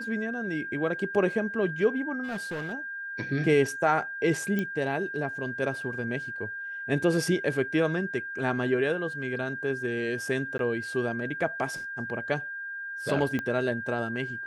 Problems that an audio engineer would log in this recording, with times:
whistle 1,600 Hz −34 dBFS
0:02.23–0:02.74: clipping −29.5 dBFS
0:04.59: click −17 dBFS
0:10.58–0:10.59: drop-out 12 ms
0:13.39: click −18 dBFS

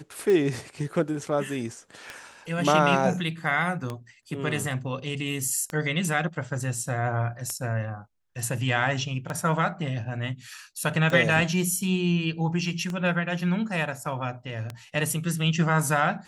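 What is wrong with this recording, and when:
scratch tick 33 1/3 rpm −17 dBFS

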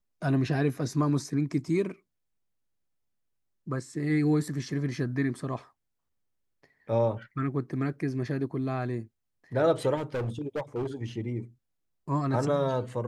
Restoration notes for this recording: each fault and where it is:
0:09.96–0:10.87: clipping −27.5 dBFS

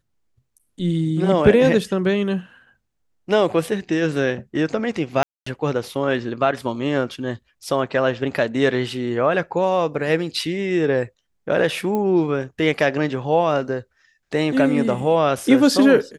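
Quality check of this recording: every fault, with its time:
0:05.23–0:05.46: drop-out 234 ms
0:11.95: click −13 dBFS

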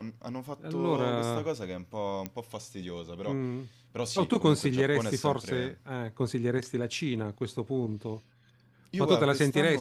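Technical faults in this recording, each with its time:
0:02.26: click −19 dBFS

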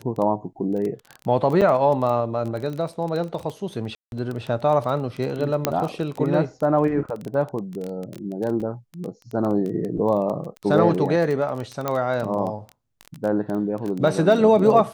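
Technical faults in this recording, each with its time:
surface crackle 15 per second −26 dBFS
0:01.61–0:01.62: drop-out 7 ms
0:03.95–0:04.12: drop-out 171 ms
0:05.65: click −4 dBFS
0:08.60: drop-out 4.5 ms
0:11.88: click −10 dBFS

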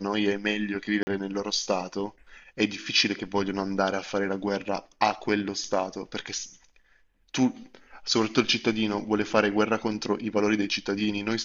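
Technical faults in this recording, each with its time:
0:01.03–0:01.07: drop-out 40 ms

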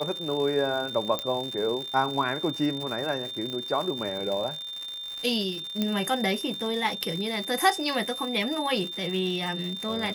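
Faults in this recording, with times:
surface crackle 190 per second −32 dBFS
whistle 3,600 Hz −34 dBFS
0:01.19: click −13 dBFS
0:03.50: click −22 dBFS
0:05.82: click −13 dBFS

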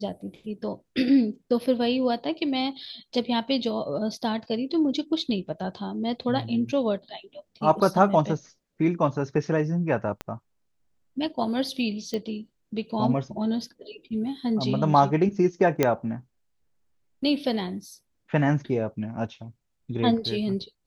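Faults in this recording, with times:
0:10.21: click −17 dBFS
0:12.14: click −18 dBFS
0:15.83: click −7 dBFS

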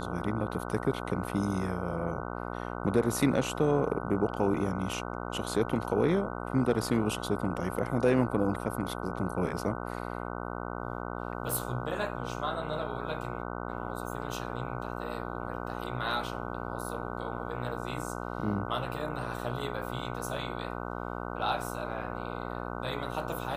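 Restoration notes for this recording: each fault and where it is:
mains buzz 60 Hz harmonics 25 −37 dBFS

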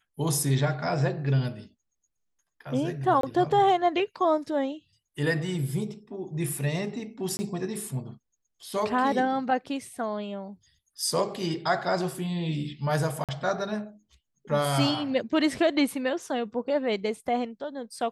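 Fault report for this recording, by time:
0:03.21–0:03.23: drop-out 23 ms
0:07.37–0:07.39: drop-out 20 ms
0:13.24–0:13.29: drop-out 47 ms

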